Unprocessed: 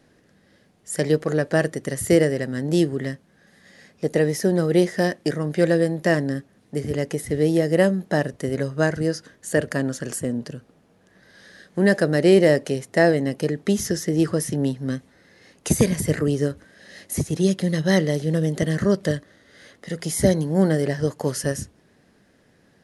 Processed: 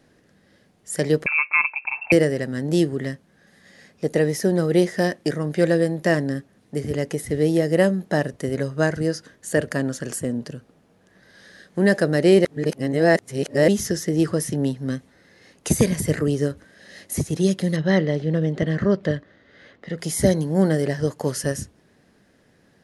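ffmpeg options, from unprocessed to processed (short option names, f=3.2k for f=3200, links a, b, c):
-filter_complex "[0:a]asettb=1/sr,asplit=3[a][b][c];[a]atrim=end=1.264[d];[b]atrim=start=1.26:end=2.12,asetpts=PTS-STARTPTS,afade=t=in:d=0.004:c=qsin,afade=t=out:st=0.856:d=0.004:c=qsin,lowpass=f=2.4k:t=q:w=0.5098,lowpass=f=2.4k:t=q:w=0.6013,lowpass=f=2.4k:t=q:w=0.9,lowpass=f=2.4k:t=q:w=2.563,afreqshift=-2800[e];[c]atrim=start=2.116[f];[d][e]acrossfade=d=0.004:c1=hsin:c2=qsin[g];[g][f]acrossfade=d=0.004:c1=qsin:c2=hsin,asettb=1/sr,asplit=3[h][i][j];[h]atrim=end=17.764[k];[i]atrim=start=17.76:end=19.98,asetpts=PTS-STARTPTS,afade=t=in:d=0.004:c=qsin,afade=t=out:st=2.216:d=0.004:c=qsin,lowpass=3.3k[l];[j]atrim=start=19.976[m];[k][l]acrossfade=d=0.004:c1=hsin:c2=qsin[n];[n][m]acrossfade=d=0.004:c1=qsin:c2=hsin,asplit=3[o][p][q];[o]atrim=end=12.452[r];[p]atrim=start=12.448:end=13.682,asetpts=PTS-STARTPTS,areverse[s];[q]atrim=start=13.678[t];[r][s]acrossfade=d=0.004:c1=hsin:c2=hsin[u];[u][t]acrossfade=d=0.004:c1=hsin:c2=hsin"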